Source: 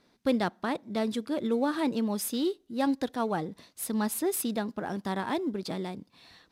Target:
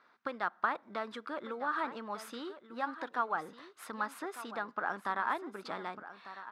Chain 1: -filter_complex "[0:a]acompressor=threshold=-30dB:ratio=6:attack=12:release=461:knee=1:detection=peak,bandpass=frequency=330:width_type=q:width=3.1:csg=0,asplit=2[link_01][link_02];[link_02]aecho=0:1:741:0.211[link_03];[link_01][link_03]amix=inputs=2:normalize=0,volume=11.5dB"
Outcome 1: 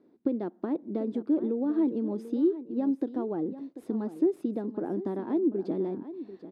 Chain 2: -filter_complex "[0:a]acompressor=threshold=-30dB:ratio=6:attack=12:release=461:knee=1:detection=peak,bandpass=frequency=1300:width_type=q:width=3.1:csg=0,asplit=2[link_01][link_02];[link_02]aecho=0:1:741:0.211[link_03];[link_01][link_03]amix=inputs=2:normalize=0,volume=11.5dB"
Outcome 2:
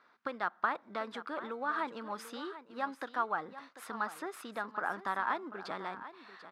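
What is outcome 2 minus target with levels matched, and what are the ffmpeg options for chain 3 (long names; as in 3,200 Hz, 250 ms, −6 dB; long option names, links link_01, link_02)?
echo 458 ms early
-filter_complex "[0:a]acompressor=threshold=-30dB:ratio=6:attack=12:release=461:knee=1:detection=peak,bandpass=frequency=1300:width_type=q:width=3.1:csg=0,asplit=2[link_01][link_02];[link_02]aecho=0:1:1199:0.211[link_03];[link_01][link_03]amix=inputs=2:normalize=0,volume=11.5dB"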